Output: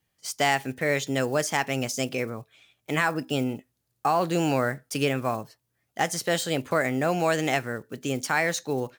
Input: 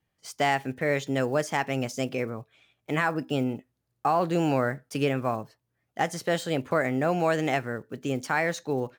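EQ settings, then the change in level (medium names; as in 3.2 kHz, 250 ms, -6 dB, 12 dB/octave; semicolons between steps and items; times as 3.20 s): treble shelf 3.2 kHz +10 dB; 0.0 dB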